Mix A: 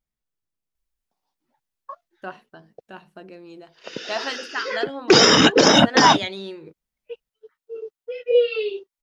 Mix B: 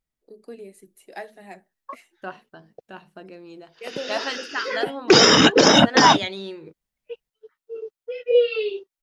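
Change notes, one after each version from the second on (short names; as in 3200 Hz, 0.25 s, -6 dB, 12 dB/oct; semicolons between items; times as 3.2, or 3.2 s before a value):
first voice: unmuted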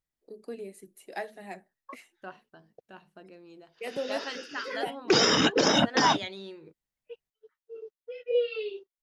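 second voice -8.5 dB; background -9.0 dB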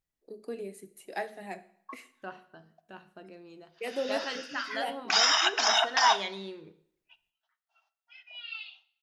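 background: add brick-wall FIR high-pass 620 Hz; reverb: on, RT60 0.70 s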